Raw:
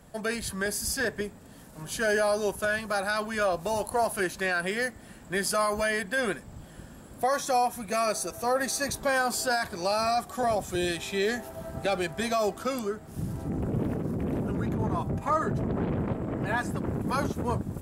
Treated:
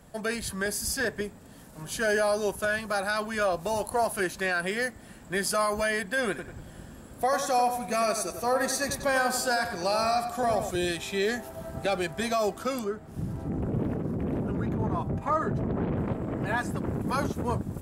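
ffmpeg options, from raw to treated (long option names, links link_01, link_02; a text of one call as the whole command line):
ffmpeg -i in.wav -filter_complex "[0:a]asettb=1/sr,asplit=3[link_01][link_02][link_03];[link_01]atrim=end=6.294[link_04];[link_02]atrim=start=6.29:end=10.71,asetpts=PTS-STARTPTS,afade=type=in:duration=0.004:curve=qsin,afade=type=out:start_time=4.416:duration=0.004:curve=qsin,asplit=2[link_05][link_06];[link_06]adelay=94,lowpass=frequency=3700:poles=1,volume=-7.5dB,asplit=2[link_07][link_08];[link_08]adelay=94,lowpass=frequency=3700:poles=1,volume=0.41,asplit=2[link_09][link_10];[link_10]adelay=94,lowpass=frequency=3700:poles=1,volume=0.41,asplit=2[link_11][link_12];[link_12]adelay=94,lowpass=frequency=3700:poles=1,volume=0.41,asplit=2[link_13][link_14];[link_14]adelay=94,lowpass=frequency=3700:poles=1,volume=0.41[link_15];[link_05][link_07][link_09][link_11][link_13][link_15]amix=inputs=6:normalize=0,atrim=end_sample=194922[link_16];[link_03]atrim=start=10.706[link_17];[link_04][link_16]acrossfade=duration=0.004:curve1=hsin:curve2=qsin[link_18];[link_18][link_17]acrossfade=duration=0.004:curve1=qsin:curve2=hsin,asettb=1/sr,asplit=3[link_19][link_20][link_21];[link_19]atrim=end=12.844[link_22];[link_20]atrim=start=12.84:end=15.97,asetpts=PTS-STARTPTS,afade=type=in:duration=0.004:curve=qsin,afade=type=out:start_time=3.126:duration=0.004:curve=qsin,highshelf=frequency=4300:gain=-8.5[link_23];[link_21]atrim=start=15.966[link_24];[link_22][link_23]acrossfade=duration=0.004:curve1=hsin:curve2=qsin[link_25];[link_25][link_24]acrossfade=duration=0.004:curve1=qsin:curve2=hsin" out.wav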